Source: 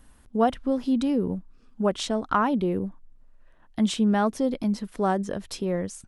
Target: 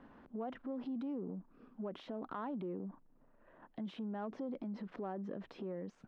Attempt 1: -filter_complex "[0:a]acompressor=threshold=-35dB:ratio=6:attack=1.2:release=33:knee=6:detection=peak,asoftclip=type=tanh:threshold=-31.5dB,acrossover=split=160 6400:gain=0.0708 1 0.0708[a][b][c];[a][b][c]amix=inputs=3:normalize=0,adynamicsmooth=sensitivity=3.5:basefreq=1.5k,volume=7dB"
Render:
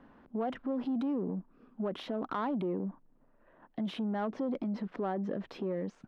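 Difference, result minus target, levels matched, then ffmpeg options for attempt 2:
compressor: peak gain reduction -9 dB
-filter_complex "[0:a]acompressor=threshold=-46dB:ratio=6:attack=1.2:release=33:knee=6:detection=peak,asoftclip=type=tanh:threshold=-31.5dB,acrossover=split=160 6400:gain=0.0708 1 0.0708[a][b][c];[a][b][c]amix=inputs=3:normalize=0,adynamicsmooth=sensitivity=3.5:basefreq=1.5k,volume=7dB"

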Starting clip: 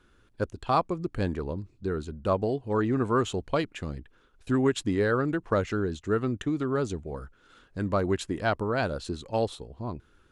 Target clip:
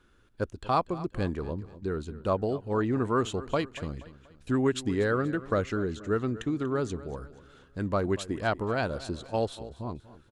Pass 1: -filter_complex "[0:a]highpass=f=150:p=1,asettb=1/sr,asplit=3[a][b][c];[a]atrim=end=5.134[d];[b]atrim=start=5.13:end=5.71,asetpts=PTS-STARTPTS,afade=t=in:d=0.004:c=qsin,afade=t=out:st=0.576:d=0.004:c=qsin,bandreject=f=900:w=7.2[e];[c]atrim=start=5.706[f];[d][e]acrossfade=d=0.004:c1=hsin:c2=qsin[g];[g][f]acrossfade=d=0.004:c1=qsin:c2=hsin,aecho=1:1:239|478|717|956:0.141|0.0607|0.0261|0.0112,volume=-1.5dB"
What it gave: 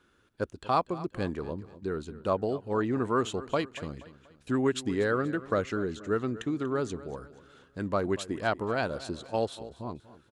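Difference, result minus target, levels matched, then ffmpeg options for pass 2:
125 Hz band -3.0 dB
-filter_complex "[0:a]asettb=1/sr,asplit=3[a][b][c];[a]atrim=end=5.134[d];[b]atrim=start=5.13:end=5.71,asetpts=PTS-STARTPTS,afade=t=in:d=0.004:c=qsin,afade=t=out:st=0.576:d=0.004:c=qsin,bandreject=f=900:w=7.2[e];[c]atrim=start=5.706[f];[d][e]acrossfade=d=0.004:c1=hsin:c2=qsin[g];[g][f]acrossfade=d=0.004:c1=qsin:c2=hsin,aecho=1:1:239|478|717|956:0.141|0.0607|0.0261|0.0112,volume=-1.5dB"

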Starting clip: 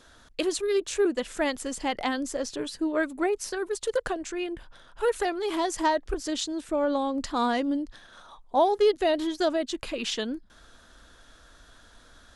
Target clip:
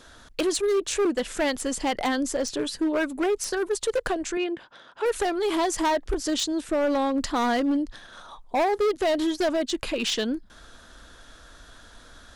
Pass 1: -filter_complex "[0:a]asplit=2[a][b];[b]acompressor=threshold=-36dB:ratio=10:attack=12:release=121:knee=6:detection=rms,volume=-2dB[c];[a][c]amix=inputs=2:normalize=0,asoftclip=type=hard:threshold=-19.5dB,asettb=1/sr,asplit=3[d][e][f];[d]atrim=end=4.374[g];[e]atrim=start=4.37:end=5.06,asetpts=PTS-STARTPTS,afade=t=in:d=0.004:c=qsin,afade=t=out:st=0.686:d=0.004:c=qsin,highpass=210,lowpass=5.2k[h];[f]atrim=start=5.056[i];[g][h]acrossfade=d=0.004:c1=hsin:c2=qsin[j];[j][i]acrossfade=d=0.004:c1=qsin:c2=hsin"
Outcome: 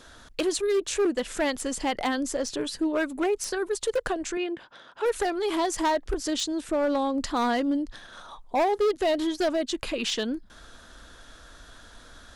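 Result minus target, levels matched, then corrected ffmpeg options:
compressor: peak gain reduction +11 dB
-filter_complex "[0:a]asplit=2[a][b];[b]acompressor=threshold=-24dB:ratio=10:attack=12:release=121:knee=6:detection=rms,volume=-2dB[c];[a][c]amix=inputs=2:normalize=0,asoftclip=type=hard:threshold=-19.5dB,asettb=1/sr,asplit=3[d][e][f];[d]atrim=end=4.374[g];[e]atrim=start=4.37:end=5.06,asetpts=PTS-STARTPTS,afade=t=in:d=0.004:c=qsin,afade=t=out:st=0.686:d=0.004:c=qsin,highpass=210,lowpass=5.2k[h];[f]atrim=start=5.056[i];[g][h]acrossfade=d=0.004:c1=hsin:c2=qsin[j];[j][i]acrossfade=d=0.004:c1=qsin:c2=hsin"

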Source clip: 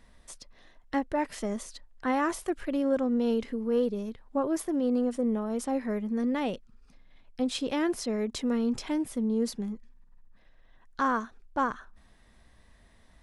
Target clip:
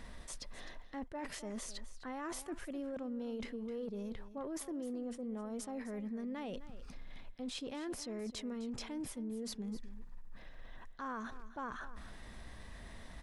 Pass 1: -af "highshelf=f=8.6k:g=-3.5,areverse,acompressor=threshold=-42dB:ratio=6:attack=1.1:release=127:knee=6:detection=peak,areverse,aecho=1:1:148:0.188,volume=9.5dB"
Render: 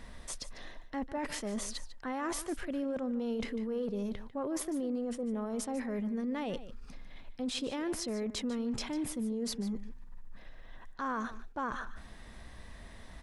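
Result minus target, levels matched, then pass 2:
echo 0.11 s early; compressor: peak gain reduction -6.5 dB
-af "highshelf=f=8.6k:g=-3.5,areverse,acompressor=threshold=-50dB:ratio=6:attack=1.1:release=127:knee=6:detection=peak,areverse,aecho=1:1:258:0.188,volume=9.5dB"

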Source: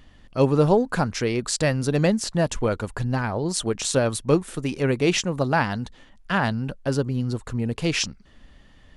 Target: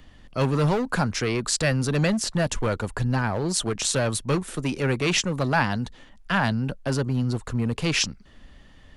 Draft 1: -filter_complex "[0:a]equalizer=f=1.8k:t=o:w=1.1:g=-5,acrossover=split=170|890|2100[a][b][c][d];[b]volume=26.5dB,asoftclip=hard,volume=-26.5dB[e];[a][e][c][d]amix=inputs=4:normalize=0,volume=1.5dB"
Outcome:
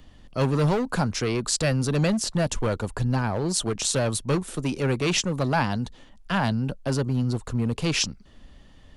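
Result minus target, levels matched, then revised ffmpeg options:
2000 Hz band -3.5 dB
-filter_complex "[0:a]acrossover=split=170|890|2100[a][b][c][d];[b]volume=26.5dB,asoftclip=hard,volume=-26.5dB[e];[a][e][c][d]amix=inputs=4:normalize=0,volume=1.5dB"

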